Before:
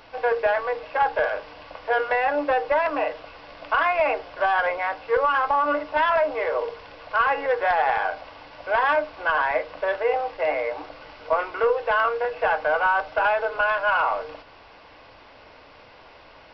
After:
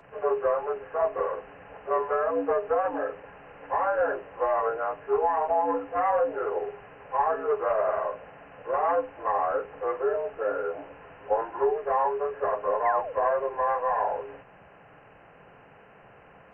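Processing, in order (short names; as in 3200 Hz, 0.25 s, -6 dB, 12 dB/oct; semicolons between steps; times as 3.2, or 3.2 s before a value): inharmonic rescaling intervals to 80%; painted sound fall, 12.85–13.13, 450–2200 Hz -33 dBFS; band noise 110–210 Hz -60 dBFS; gain -2.5 dB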